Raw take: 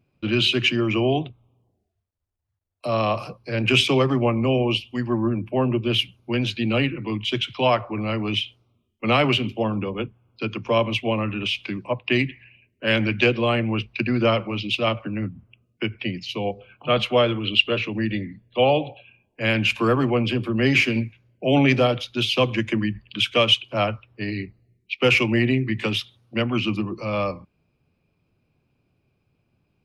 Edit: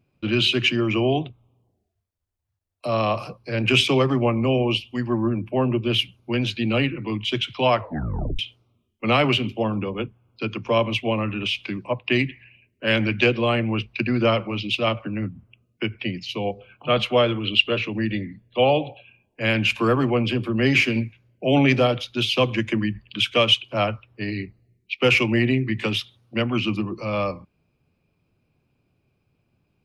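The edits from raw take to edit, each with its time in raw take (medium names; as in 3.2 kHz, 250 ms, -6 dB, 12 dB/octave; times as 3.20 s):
7.79 s: tape stop 0.60 s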